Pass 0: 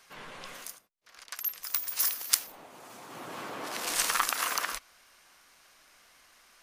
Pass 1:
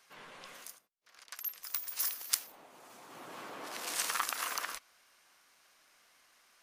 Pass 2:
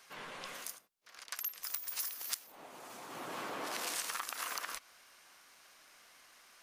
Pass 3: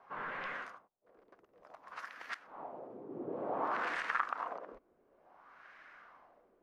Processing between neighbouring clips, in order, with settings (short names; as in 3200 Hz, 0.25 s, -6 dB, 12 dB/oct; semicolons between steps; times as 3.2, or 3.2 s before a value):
low shelf 97 Hz -11.5 dB; gain -6 dB
compressor 12:1, threshold -40 dBFS, peak gain reduction 17 dB; gain +5 dB
LFO low-pass sine 0.56 Hz 380–1800 Hz; gain +2.5 dB